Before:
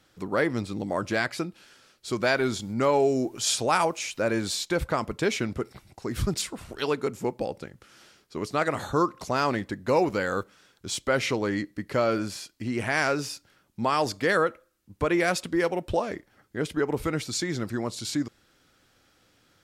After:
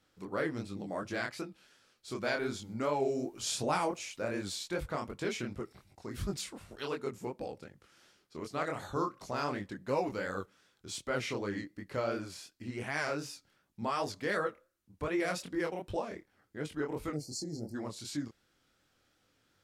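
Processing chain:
0:03.40–0:04.02: low-shelf EQ 390 Hz +8 dB
0:17.13–0:17.75: gain on a spectral selection 870–4,100 Hz −27 dB
chorus effect 2.7 Hz, delay 20 ms, depth 7.5 ms
level −6.5 dB

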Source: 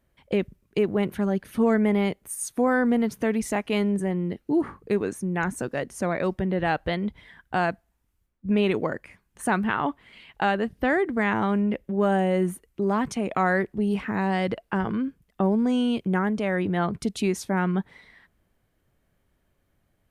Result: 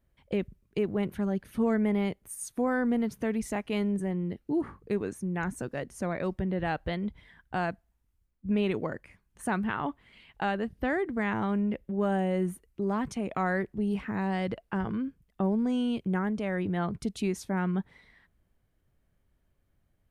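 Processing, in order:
low-shelf EQ 140 Hz +8 dB
level −7 dB

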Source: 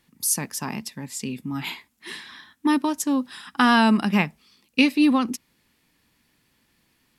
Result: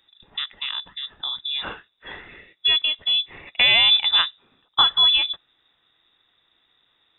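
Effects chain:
low-shelf EQ 100 Hz +9.5 dB
voice inversion scrambler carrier 3,700 Hz

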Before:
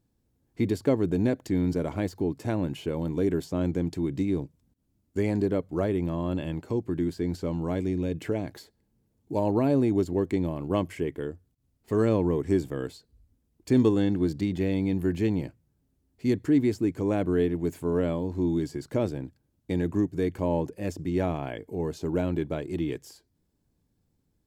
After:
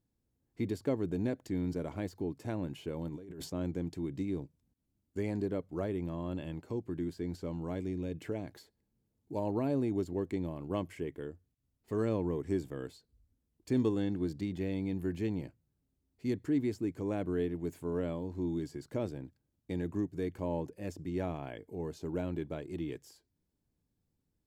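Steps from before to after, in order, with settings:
0:03.08–0:03.50: compressor whose output falls as the input rises −36 dBFS, ratio −1
level −8.5 dB

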